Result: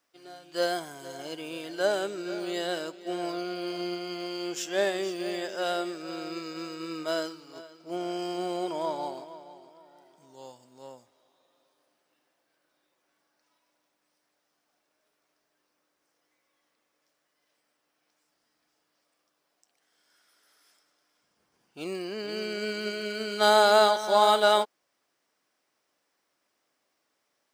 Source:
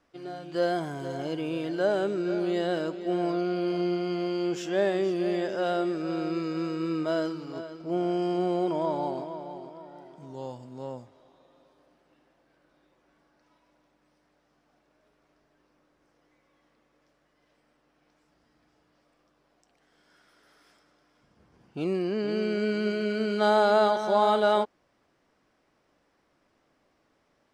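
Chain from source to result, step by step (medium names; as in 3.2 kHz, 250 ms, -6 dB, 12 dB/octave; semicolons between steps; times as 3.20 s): RIAA curve recording; upward expansion 1.5:1, over -43 dBFS; trim +3.5 dB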